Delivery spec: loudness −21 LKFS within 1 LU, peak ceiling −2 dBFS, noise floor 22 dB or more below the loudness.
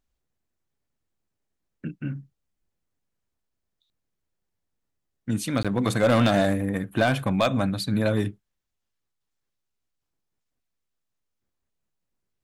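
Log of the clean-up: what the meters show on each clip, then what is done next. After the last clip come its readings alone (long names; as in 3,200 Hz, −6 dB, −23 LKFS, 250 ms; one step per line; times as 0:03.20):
share of clipped samples 0.4%; peaks flattened at −14.0 dBFS; number of dropouts 1; longest dropout 16 ms; integrated loudness −24.5 LKFS; sample peak −14.0 dBFS; target loudness −21.0 LKFS
→ clipped peaks rebuilt −14 dBFS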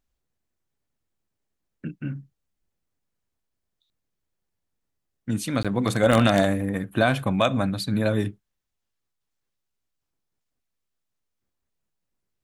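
share of clipped samples 0.0%; number of dropouts 1; longest dropout 16 ms
→ repair the gap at 0:05.63, 16 ms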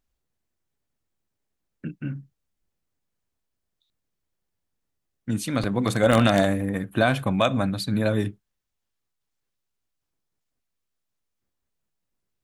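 number of dropouts 0; integrated loudness −23.5 LKFS; sample peak −5.0 dBFS; target loudness −21.0 LKFS
→ level +2.5 dB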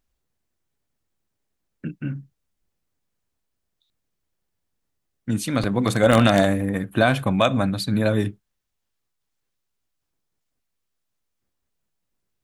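integrated loudness −21.0 LKFS; sample peak −2.5 dBFS; background noise floor −78 dBFS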